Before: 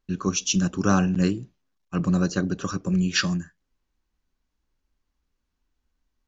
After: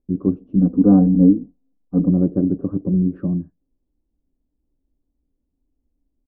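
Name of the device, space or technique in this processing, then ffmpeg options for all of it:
under water: -filter_complex "[0:a]lowpass=f=630:w=0.5412,lowpass=f=630:w=1.3066,equalizer=f=280:t=o:w=0.39:g=9.5,asplit=3[s0][s1][s2];[s0]afade=t=out:st=0.57:d=0.02[s3];[s1]aecho=1:1:4.1:0.87,afade=t=in:st=0.57:d=0.02,afade=t=out:st=2.08:d=0.02[s4];[s2]afade=t=in:st=2.08:d=0.02[s5];[s3][s4][s5]amix=inputs=3:normalize=0,volume=1.5"

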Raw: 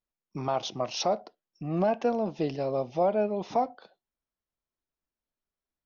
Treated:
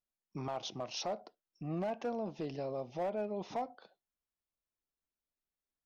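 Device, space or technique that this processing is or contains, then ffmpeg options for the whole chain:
clipper into limiter: -af "asoftclip=type=hard:threshold=0.1,alimiter=level_in=1.06:limit=0.0631:level=0:latency=1:release=107,volume=0.944,volume=0.501"

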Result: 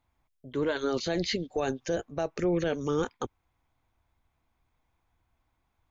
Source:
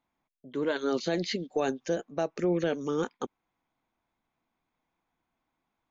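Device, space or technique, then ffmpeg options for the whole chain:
car stereo with a boomy subwoofer: -af "lowshelf=f=130:t=q:w=1.5:g=13,alimiter=limit=0.075:level=0:latency=1:release=14,volume=1.41"

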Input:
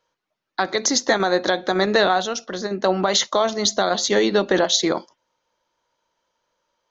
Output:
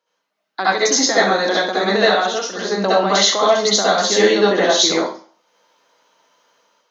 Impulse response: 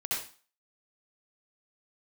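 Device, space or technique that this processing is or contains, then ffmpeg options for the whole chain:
far laptop microphone: -filter_complex "[1:a]atrim=start_sample=2205[s0];[0:a][s0]afir=irnorm=-1:irlink=0,highpass=f=180:w=0.5412,highpass=f=180:w=1.3066,dynaudnorm=f=150:g=5:m=3.55,volume=0.891"

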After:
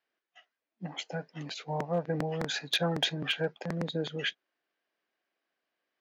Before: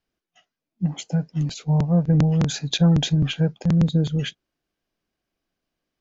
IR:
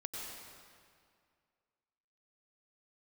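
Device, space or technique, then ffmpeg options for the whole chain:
megaphone: -af "highpass=460,lowpass=3800,equalizer=f=1800:t=o:w=0.45:g=5,asoftclip=type=hard:threshold=0.106"

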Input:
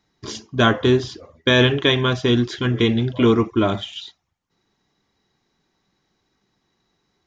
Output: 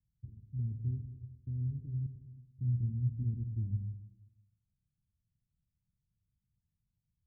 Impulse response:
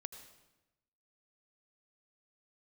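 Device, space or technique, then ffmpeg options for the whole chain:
club heard from the street: -filter_complex "[0:a]asettb=1/sr,asplit=3[s0][s1][s2];[s0]atrim=end=2.064[s3];[s1]atrim=start=2.06:end=2.57,asetpts=PTS-STARTPTS,afade=t=in:d=0.004:c=qsin,afade=t=out:st=0.506:d=0.004:c=qsin,aderivative[s4];[s2]atrim=start=2.566[s5];[s3][s4]acrossfade=d=0.004:c1=hsin:c2=qsin[s6];[s6][s5]acrossfade=d=0.004:c1=qsin:c2=hsin,alimiter=limit=0.316:level=0:latency=1:release=429,lowpass=f=130:w=0.5412,lowpass=f=130:w=1.3066[s7];[1:a]atrim=start_sample=2205[s8];[s7][s8]afir=irnorm=-1:irlink=0"

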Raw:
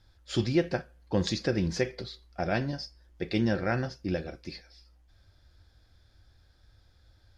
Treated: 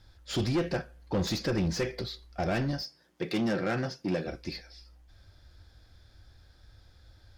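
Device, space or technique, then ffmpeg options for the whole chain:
saturation between pre-emphasis and de-emphasis: -filter_complex "[0:a]highshelf=f=2200:g=9.5,asoftclip=type=tanh:threshold=0.0422,highshelf=f=2200:g=-9.5,asettb=1/sr,asplit=3[s0][s1][s2];[s0]atrim=end=2.824[s3];[s1]atrim=start=2.82:end=4.28,asetpts=PTS-STARTPTS,afade=t=in:d=0.004:c=qsin,afade=t=out:st=1.456:d=0.004:c=qsin,highpass=f=130:w=0.5412,highpass=f=130:w=1.3066[s4];[s2]atrim=start=4.276[s5];[s3][s4]acrossfade=d=0.004:c1=hsin:c2=qsin[s6];[s6][s5]acrossfade=d=0.004:c1=qsin:c2=hsin,volume=1.68"

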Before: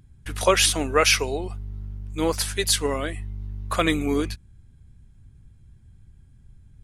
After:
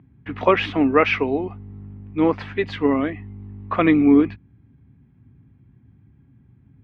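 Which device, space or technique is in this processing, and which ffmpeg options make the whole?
bass cabinet: -af "highpass=f=82:w=0.5412,highpass=f=82:w=1.3066,equalizer=f=86:t=q:w=4:g=-9,equalizer=f=270:t=q:w=4:g=10,equalizer=f=560:t=q:w=4:g=-4,equalizer=f=1500:t=q:w=4:g=-6,lowpass=f=2300:w=0.5412,lowpass=f=2300:w=1.3066,volume=1.68"

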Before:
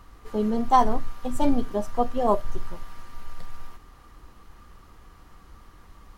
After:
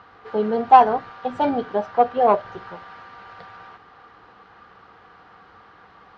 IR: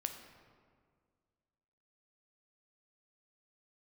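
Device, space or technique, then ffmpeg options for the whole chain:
overdrive pedal into a guitar cabinet: -filter_complex "[0:a]asplit=2[s0][s1];[s1]highpass=f=720:p=1,volume=3.98,asoftclip=type=tanh:threshold=0.501[s2];[s0][s2]amix=inputs=2:normalize=0,lowpass=f=4900:p=1,volume=0.501,highpass=96,equalizer=f=100:t=q:w=4:g=7,equalizer=f=180:t=q:w=4:g=6,equalizer=f=460:t=q:w=4:g=8,equalizer=f=770:t=q:w=4:g=9,equalizer=f=1500:t=q:w=4:g=8,lowpass=f=4400:w=0.5412,lowpass=f=4400:w=1.3066,asettb=1/sr,asplit=3[s3][s4][s5];[s3]atrim=end=1.764[s6];[s4]atrim=start=1.76:end=2.21,asetpts=PTS-STARTPTS,afade=t=in:d=0.004:c=qsin,afade=t=out:st=0.446:d=0.004:c=qsin,lowpass=6900[s7];[s5]atrim=start=2.206[s8];[s6][s7]acrossfade=d=0.004:c1=hsin:c2=qsin[s9];[s9][s8]acrossfade=d=0.004:c1=qsin:c2=hsin,volume=0.75"

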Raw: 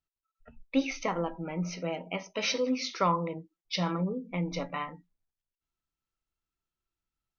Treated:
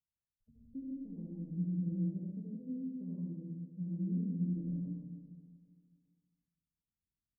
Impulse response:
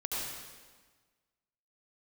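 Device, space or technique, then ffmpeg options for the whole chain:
club heard from the street: -filter_complex "[0:a]highpass=f=240:p=1,equalizer=f=1300:t=o:w=2.1:g=-10,alimiter=level_in=1.26:limit=0.0631:level=0:latency=1:release=380,volume=0.794,lowpass=f=220:w=0.5412,lowpass=f=220:w=1.3066[s0];[1:a]atrim=start_sample=2205[s1];[s0][s1]afir=irnorm=-1:irlink=0,asplit=3[s2][s3][s4];[s2]afade=t=out:st=1.86:d=0.02[s5];[s3]aecho=1:1:5.5:0.95,afade=t=in:st=1.86:d=0.02,afade=t=out:st=2.3:d=0.02[s6];[s4]afade=t=in:st=2.3:d=0.02[s7];[s5][s6][s7]amix=inputs=3:normalize=0,aecho=1:1:400|800|1200:0.119|0.0464|0.0181,volume=1.41"

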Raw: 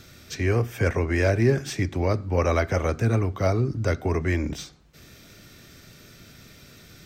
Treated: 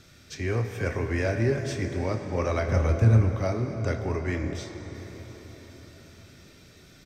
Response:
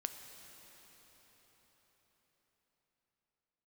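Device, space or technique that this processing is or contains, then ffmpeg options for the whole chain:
cathedral: -filter_complex "[0:a]lowpass=11000[s0];[1:a]atrim=start_sample=2205[s1];[s0][s1]afir=irnorm=-1:irlink=0,asettb=1/sr,asplit=3[s2][s3][s4];[s2]atrim=end=2.674[s5];[s3]atrim=start=2.67:end=3.36,asetpts=PTS-STARTPTS,afade=t=in:d=0.004:c=qsin,afade=t=out:st=0.686:d=0.004:c=qsin,lowshelf=f=160:g=12[s6];[s4]atrim=start=3.356[s7];[s5][s6]acrossfade=d=0.004:c1=hsin:c2=qsin[s8];[s8][s7]acrossfade=d=0.004:c1=qsin:c2=hsin,asplit=2[s9][s10];[s10]adelay=27,volume=0.282[s11];[s9][s11]amix=inputs=2:normalize=0,volume=0.668"

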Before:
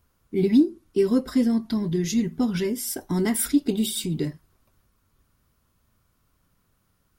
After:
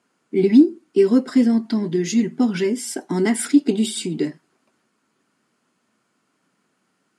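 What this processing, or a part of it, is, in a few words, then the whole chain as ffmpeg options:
television speaker: -af "highpass=f=210:w=0.5412,highpass=f=210:w=1.3066,equalizer=f=540:t=q:w=4:g=-4,equalizer=f=1100:t=q:w=4:g=-5,equalizer=f=3700:t=q:w=4:g=-6,equalizer=f=5700:t=q:w=4:g=-6,lowpass=f=8300:w=0.5412,lowpass=f=8300:w=1.3066,volume=2.11"

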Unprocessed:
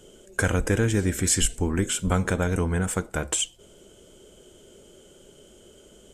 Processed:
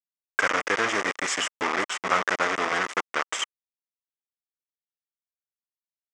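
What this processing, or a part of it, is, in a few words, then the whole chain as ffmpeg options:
hand-held game console: -af "acrusher=bits=3:mix=0:aa=0.000001,highpass=480,equalizer=f=1200:t=q:w=4:g=8,equalizer=f=2000:t=q:w=4:g=8,equalizer=f=4200:t=q:w=4:g=-9,lowpass=f=6000:w=0.5412,lowpass=f=6000:w=1.3066"

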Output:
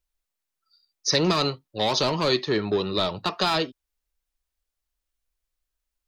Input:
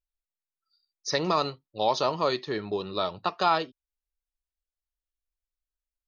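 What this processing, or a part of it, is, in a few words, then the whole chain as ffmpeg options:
one-band saturation: -filter_complex "[0:a]acrossover=split=370|2300[s0][s1][s2];[s1]asoftclip=type=tanh:threshold=0.02[s3];[s0][s3][s2]amix=inputs=3:normalize=0,volume=2.66"

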